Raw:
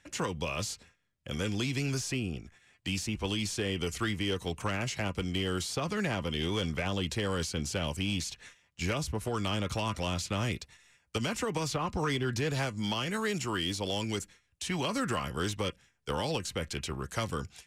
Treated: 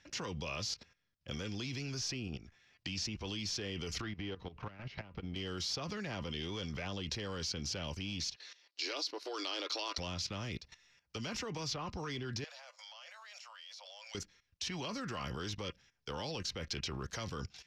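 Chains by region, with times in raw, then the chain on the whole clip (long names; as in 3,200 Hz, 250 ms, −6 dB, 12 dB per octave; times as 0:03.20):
0:02.27–0:03.05: low-pass filter 9,000 Hz + downward compressor 8 to 1, threshold −36 dBFS
0:04.01–0:05.36: high-frequency loss of the air 340 metres + downward compressor 16 to 1, threshold −40 dBFS + leveller curve on the samples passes 1
0:08.36–0:09.98: linear-phase brick-wall high-pass 280 Hz + parametric band 4,300 Hz +13 dB 0.49 octaves
0:12.44–0:14.15: Butterworth high-pass 540 Hz 96 dB per octave + downward compressor 12 to 1, threshold −40 dBFS
whole clip: output level in coarse steps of 14 dB; high shelf with overshoot 6,900 Hz −9.5 dB, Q 3; level +1.5 dB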